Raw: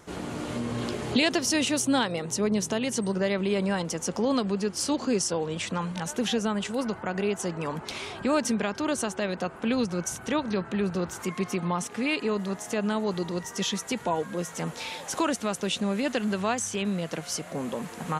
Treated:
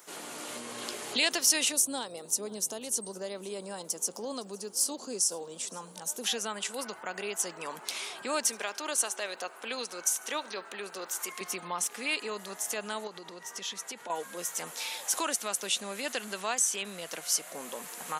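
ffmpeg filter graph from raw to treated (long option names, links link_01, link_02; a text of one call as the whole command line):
ffmpeg -i in.wav -filter_complex "[0:a]asettb=1/sr,asplit=3[link_01][link_02][link_03];[link_01]atrim=end=1.724[link_04];[link_02]atrim=start=1.72:end=6.24,asetpts=PTS-STARTPTS,afade=type=in:duration=0.004:curve=qsin,afade=type=out:start_time=4.516:duration=0.004:curve=qsin,equalizer=frequency=2100:width=0.73:gain=-15,aecho=1:1:512:0.0841,atrim=end_sample=199332[link_05];[link_03]atrim=start=6.236[link_06];[link_04][link_05]acrossfade=duration=0.004:curve1=hsin:curve2=qsin[link_07];[link_07][link_06]acrossfade=duration=0.004:curve1=qsin:curve2=hsin,asettb=1/sr,asplit=3[link_08][link_09][link_10];[link_08]atrim=end=8.454[link_11];[link_09]atrim=start=8.45:end=11.41,asetpts=PTS-STARTPTS,afade=type=in:duration=0.004:curve=qsin,afade=type=out:start_time=2.956:duration=0.004:curve=qsin,highpass=320,aecho=1:1:74|148|222|296:0.0631|0.036|0.0205|0.0117,atrim=end_sample=130536[link_12];[link_10]atrim=start=11.406[link_13];[link_11][link_12]acrossfade=duration=0.004:curve1=hsin:curve2=qsin[link_14];[link_14][link_13]acrossfade=duration=0.004:curve1=qsin:curve2=hsin,asettb=1/sr,asplit=3[link_15][link_16][link_17];[link_15]atrim=end=13.074[link_18];[link_16]atrim=start=13.07:end=14.1,asetpts=PTS-STARTPTS,afade=type=in:duration=0.004:curve=qsin,afade=type=out:start_time=1.026:duration=0.004:curve=qsin,aemphasis=mode=reproduction:type=50kf,acompressor=threshold=-31dB:ratio=4:attack=3.2:release=140:knee=1:detection=peak[link_19];[link_17]atrim=start=14.096[link_20];[link_18][link_19]acrossfade=duration=0.004:curve1=hsin:curve2=qsin[link_21];[link_21][link_20]acrossfade=duration=0.004:curve1=qsin:curve2=hsin,highpass=frequency=520:poles=1,aemphasis=mode=production:type=bsi,volume=-3.5dB" out.wav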